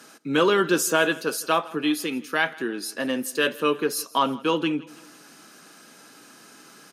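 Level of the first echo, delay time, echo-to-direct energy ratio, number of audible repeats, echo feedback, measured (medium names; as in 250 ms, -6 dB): -21.5 dB, 163 ms, -20.5 dB, 3, 46%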